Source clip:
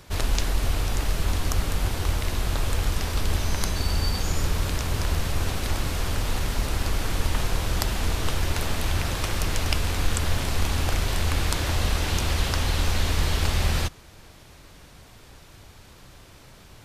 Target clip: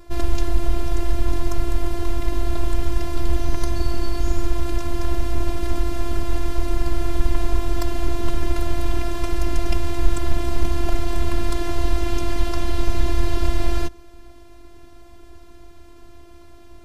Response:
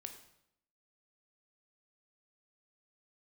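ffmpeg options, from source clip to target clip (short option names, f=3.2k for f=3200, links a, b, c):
-af "acontrast=48,afftfilt=real='hypot(re,im)*cos(PI*b)':imag='0':win_size=512:overlap=0.75,tiltshelf=f=970:g=7.5,volume=-2dB"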